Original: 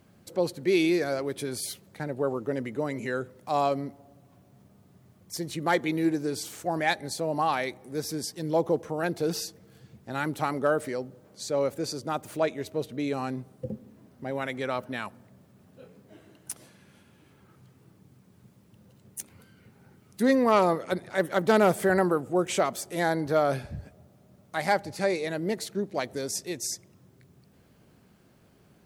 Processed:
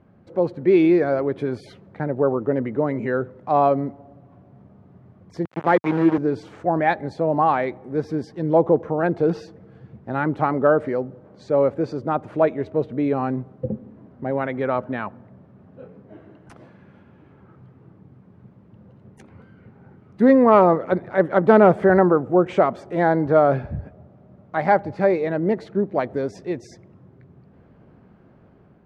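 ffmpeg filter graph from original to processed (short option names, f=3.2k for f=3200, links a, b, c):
-filter_complex "[0:a]asettb=1/sr,asplit=3[a][b][c];[a]atrim=end=5.454[d];[b]atrim=start=5.45:end=6.18,asetpts=PTS-STARTPTS,afade=t=in:d=0.004:c=qsin,afade=t=out:st=0.726:d=0.004:c=qsin,aeval=exprs='val(0)*gte(abs(val(0)),0.0376)':c=same,highpass=f=120:w=0.5412,highpass=f=120:w=1.3066[e];[c]atrim=start=6.176[f];[d][e]acrossfade=d=0.004:c1=hsin:c2=qsin[g];[g][f]acrossfade=d=0.004:c1=qsin:c2=hsin,lowpass=1.4k,dynaudnorm=f=200:g=5:m=4dB,volume=4.5dB"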